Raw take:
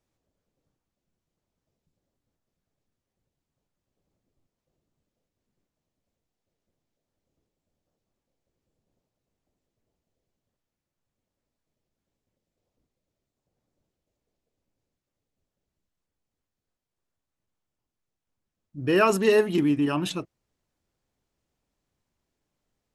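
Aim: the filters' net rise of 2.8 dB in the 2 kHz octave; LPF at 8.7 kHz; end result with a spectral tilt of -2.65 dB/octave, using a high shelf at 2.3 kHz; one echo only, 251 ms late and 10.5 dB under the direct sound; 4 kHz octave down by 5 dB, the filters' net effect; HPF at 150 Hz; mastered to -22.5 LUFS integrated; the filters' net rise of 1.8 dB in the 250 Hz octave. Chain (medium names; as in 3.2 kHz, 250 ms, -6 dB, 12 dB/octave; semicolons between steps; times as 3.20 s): high-pass 150 Hz; low-pass 8.7 kHz; peaking EQ 250 Hz +3 dB; peaking EQ 2 kHz +8 dB; treble shelf 2.3 kHz -4.5 dB; peaking EQ 4 kHz -8 dB; delay 251 ms -10.5 dB; trim -1 dB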